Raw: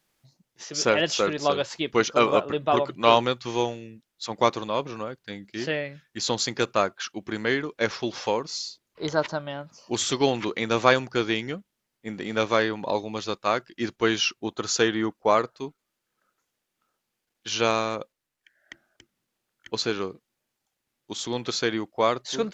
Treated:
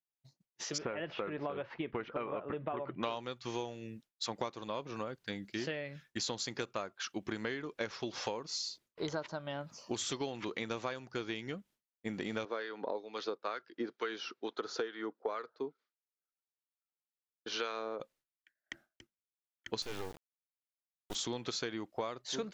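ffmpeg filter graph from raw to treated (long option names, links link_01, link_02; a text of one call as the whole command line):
ffmpeg -i in.wav -filter_complex "[0:a]asettb=1/sr,asplit=3[link_01][link_02][link_03];[link_01]atrim=end=0.784[link_04];[link_02]atrim=start=0.78:end=3.03,asetpts=PTS-STARTPTS,afade=type=in:duration=0.004:curve=qsin,afade=type=out:start_time=2.246:duration=0.004:curve=qsin,acompressor=threshold=-27dB:ratio=2:attack=3.2:release=140:knee=1:detection=peak,lowpass=frequency=2400:width=0.5412,lowpass=frequency=2400:width=1.3066[link_05];[link_03]atrim=start=3.026[link_06];[link_04][link_05]acrossfade=duration=0.004:curve1=hsin:curve2=qsin[link_07];[link_07][link_06]acrossfade=duration=0.004:curve1=qsin:curve2=hsin,asettb=1/sr,asplit=3[link_08][link_09][link_10];[link_08]atrim=end=12.454[link_11];[link_09]atrim=start=12.45:end=18,asetpts=PTS-STARTPTS,afade=type=in:duration=0.004:curve=qsin,afade=type=out:start_time=5.546:duration=0.004:curve=qsin,highpass=frequency=180:width=0.5412,highpass=frequency=180:width=1.3066,equalizer=frequency=190:width_type=q:width=4:gain=-8,equalizer=frequency=450:width_type=q:width=4:gain=8,equalizer=frequency=1400:width_type=q:width=4:gain=5,equalizer=frequency=2700:width_type=q:width=4:gain=-5,lowpass=frequency=5000:width=0.5412,lowpass=frequency=5000:width=1.3066,acrossover=split=1100[link_12][link_13];[link_12]aeval=exprs='val(0)*(1-0.7/2+0.7/2*cos(2*PI*2.2*n/s))':channel_layout=same[link_14];[link_13]aeval=exprs='val(0)*(1-0.7/2-0.7/2*cos(2*PI*2.2*n/s))':channel_layout=same[link_15];[link_14][link_15]amix=inputs=2:normalize=0[link_16];[link_10]atrim=start=17.996[link_17];[link_11][link_16]acrossfade=duration=0.004:curve1=hsin:curve2=qsin[link_18];[link_18][link_17]acrossfade=duration=0.004:curve1=qsin:curve2=hsin,asettb=1/sr,asplit=3[link_19][link_20][link_21];[link_19]atrim=end=19.824[link_22];[link_20]atrim=start=19.82:end=21.15,asetpts=PTS-STARTPTS,afade=type=in:duration=0.004:curve=qsin,afade=type=out:start_time=1.326:duration=0.004:curve=qsin,lowshelf=frequency=170:gain=-5,asoftclip=type=hard:threshold=-26dB,acrusher=bits=5:dc=4:mix=0:aa=0.000001[link_23];[link_21]atrim=start=21.146[link_24];[link_22][link_23]acrossfade=duration=0.004:curve1=hsin:curve2=qsin[link_25];[link_25][link_24]acrossfade=duration=0.004:curve1=qsin:curve2=hsin,agate=range=-33dB:threshold=-51dB:ratio=3:detection=peak,acompressor=threshold=-33dB:ratio=12,volume=-1dB" out.wav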